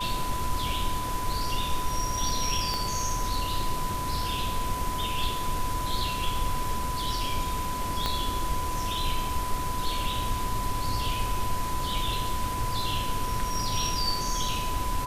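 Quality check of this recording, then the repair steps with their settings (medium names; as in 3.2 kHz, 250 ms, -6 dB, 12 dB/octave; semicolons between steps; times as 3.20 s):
whine 1 kHz -31 dBFS
2.74 s: pop
8.06 s: pop -12 dBFS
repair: de-click; band-stop 1 kHz, Q 30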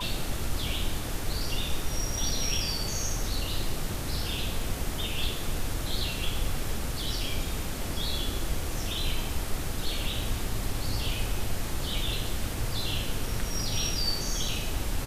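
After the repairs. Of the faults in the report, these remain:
2.74 s: pop
8.06 s: pop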